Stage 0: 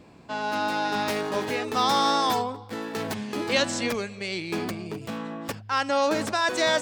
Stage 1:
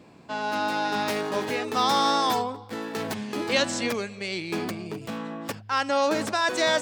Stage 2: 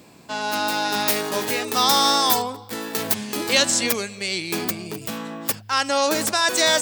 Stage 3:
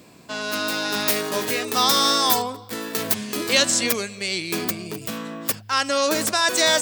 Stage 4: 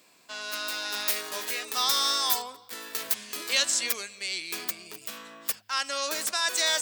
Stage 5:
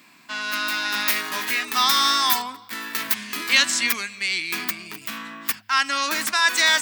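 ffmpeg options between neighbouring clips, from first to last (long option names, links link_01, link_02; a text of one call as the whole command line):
ffmpeg -i in.wav -af "highpass=96" out.wav
ffmpeg -i in.wav -af "aemphasis=mode=production:type=75fm,volume=2.5dB" out.wav
ffmpeg -i in.wav -af "bandreject=frequency=840:width=12" out.wav
ffmpeg -i in.wav -af "highpass=frequency=1400:poles=1,volume=-5dB" out.wav
ffmpeg -i in.wav -af "equalizer=frequency=125:width_type=o:width=1:gain=4,equalizer=frequency=250:width_type=o:width=1:gain=10,equalizer=frequency=500:width_type=o:width=1:gain=-11,equalizer=frequency=1000:width_type=o:width=1:gain=5,equalizer=frequency=2000:width_type=o:width=1:gain=7,equalizer=frequency=8000:width_type=o:width=1:gain=-4,volume=5dB" out.wav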